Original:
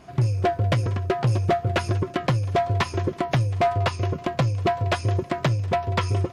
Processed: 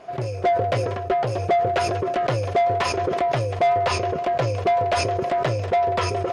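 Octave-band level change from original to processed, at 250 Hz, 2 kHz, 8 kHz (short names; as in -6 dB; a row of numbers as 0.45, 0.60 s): -3.0, +1.5, +4.5 dB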